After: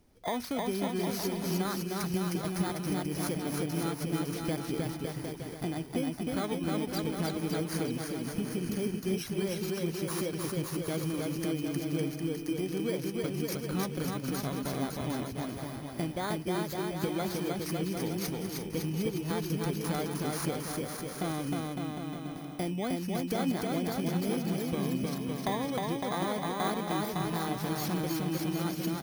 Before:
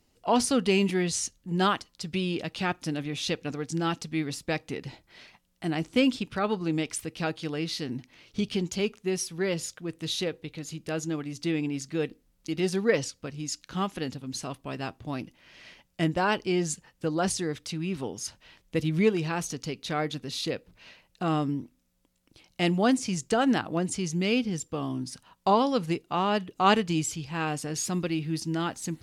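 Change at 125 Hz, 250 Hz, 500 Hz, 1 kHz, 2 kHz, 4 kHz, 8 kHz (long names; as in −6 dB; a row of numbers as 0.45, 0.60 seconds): −1.0, −3.0, −4.5, −6.5, −7.0, −6.0, −6.0 decibels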